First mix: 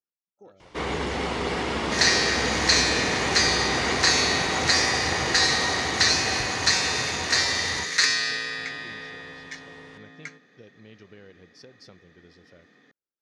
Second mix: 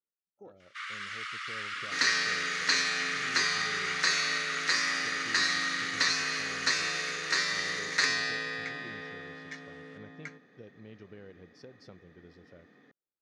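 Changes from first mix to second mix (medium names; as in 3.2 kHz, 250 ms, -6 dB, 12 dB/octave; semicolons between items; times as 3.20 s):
first sound: add steep high-pass 1.2 kHz 96 dB/octave; master: add treble shelf 2.3 kHz -10.5 dB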